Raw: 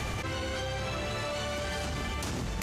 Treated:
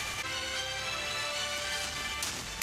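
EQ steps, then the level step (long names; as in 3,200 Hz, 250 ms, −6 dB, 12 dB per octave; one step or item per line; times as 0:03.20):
tilt shelving filter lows −9.5 dB, about 840 Hz
−3.5 dB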